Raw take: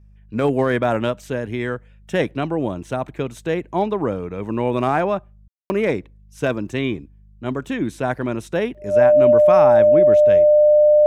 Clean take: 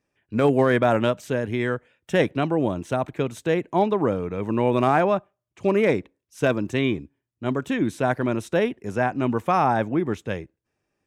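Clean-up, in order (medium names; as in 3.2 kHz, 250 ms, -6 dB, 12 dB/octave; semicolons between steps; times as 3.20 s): de-hum 51 Hz, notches 4; band-stop 600 Hz, Q 30; room tone fill 5.48–5.70 s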